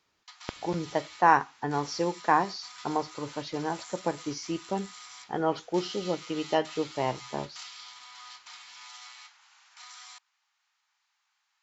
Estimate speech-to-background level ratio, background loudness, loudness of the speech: 15.5 dB, −45.5 LKFS, −30.0 LKFS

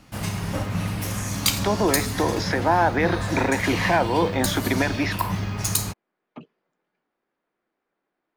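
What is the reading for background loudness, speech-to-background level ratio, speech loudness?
−27.0 LKFS, 3.5 dB, −23.5 LKFS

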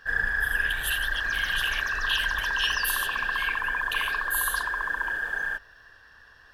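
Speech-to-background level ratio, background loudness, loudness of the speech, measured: −4.5 dB, −27.0 LKFS, −31.5 LKFS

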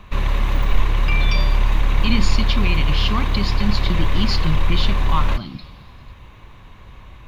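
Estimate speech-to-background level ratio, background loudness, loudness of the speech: −3.5 dB, −22.0 LKFS, −25.5 LKFS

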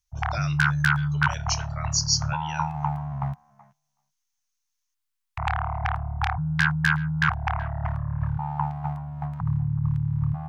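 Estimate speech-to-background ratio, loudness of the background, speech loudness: −2.0 dB, −26.5 LKFS, −28.5 LKFS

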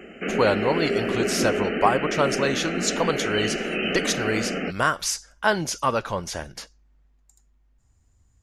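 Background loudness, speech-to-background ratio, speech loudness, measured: −26.5 LKFS, 1.5 dB, −25.0 LKFS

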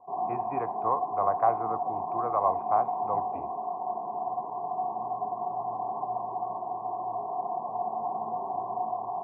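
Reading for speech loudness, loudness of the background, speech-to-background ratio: −30.5 LKFS, −32.5 LKFS, 2.0 dB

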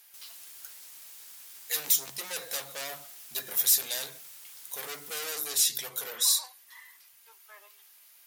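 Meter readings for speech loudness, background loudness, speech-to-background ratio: −28.0 LKFS, −46.0 LKFS, 18.0 dB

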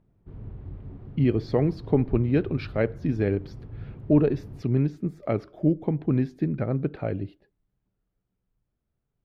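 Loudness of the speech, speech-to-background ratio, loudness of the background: −26.0 LKFS, 15.5 dB, −41.5 LKFS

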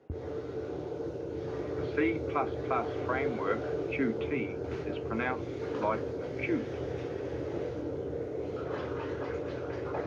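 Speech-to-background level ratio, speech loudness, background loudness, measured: 1.0 dB, −35.5 LKFS, −36.5 LKFS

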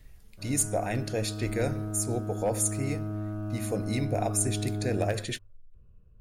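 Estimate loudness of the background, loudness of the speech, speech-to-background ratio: −35.0 LKFS, −31.0 LKFS, 4.0 dB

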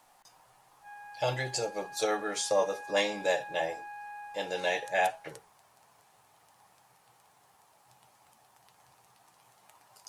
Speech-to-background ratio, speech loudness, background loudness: 14.0 dB, −31.5 LKFS, −45.5 LKFS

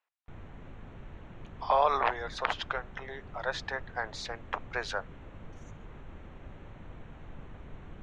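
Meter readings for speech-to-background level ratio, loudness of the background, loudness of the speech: 17.0 dB, −49.5 LKFS, −32.5 LKFS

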